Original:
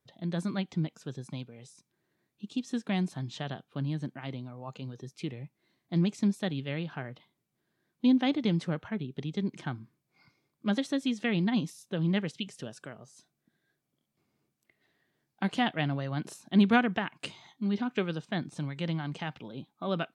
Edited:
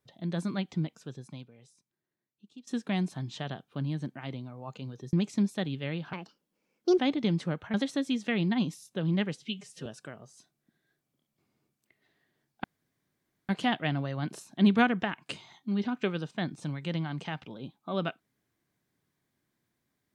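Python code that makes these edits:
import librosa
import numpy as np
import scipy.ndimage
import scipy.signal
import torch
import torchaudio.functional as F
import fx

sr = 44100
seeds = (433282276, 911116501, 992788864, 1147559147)

y = fx.edit(x, sr, fx.fade_out_to(start_s=0.77, length_s=1.9, curve='qua', floor_db=-16.0),
    fx.cut(start_s=5.13, length_s=0.85),
    fx.speed_span(start_s=6.98, length_s=1.22, speed=1.42),
    fx.cut(start_s=8.95, length_s=1.75),
    fx.stretch_span(start_s=12.31, length_s=0.34, factor=1.5),
    fx.insert_room_tone(at_s=15.43, length_s=0.85), tone=tone)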